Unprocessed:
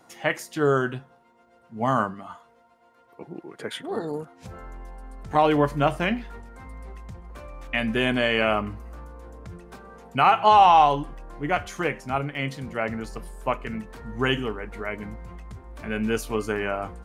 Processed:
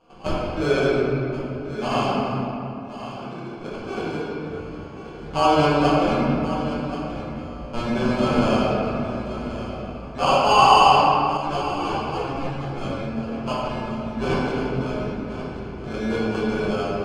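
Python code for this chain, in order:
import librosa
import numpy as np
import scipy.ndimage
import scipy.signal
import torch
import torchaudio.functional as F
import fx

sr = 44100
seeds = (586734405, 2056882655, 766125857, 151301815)

y = scipy.signal.sosfilt(scipy.signal.butter(2, 53.0, 'highpass', fs=sr, output='sos'), x)
y = fx.sample_hold(y, sr, seeds[0], rate_hz=1900.0, jitter_pct=0)
y = fx.air_absorb(y, sr, metres=110.0)
y = y + 10.0 ** (-12.5 / 20.0) * np.pad(y, (int(1081 * sr / 1000.0), 0))[:len(y)]
y = fx.room_shoebox(y, sr, seeds[1], volume_m3=130.0, walls='hard', distance_m=1.1)
y = fx.ensemble(y, sr, at=(11.37, 13.32))
y = y * librosa.db_to_amplitude(-6.0)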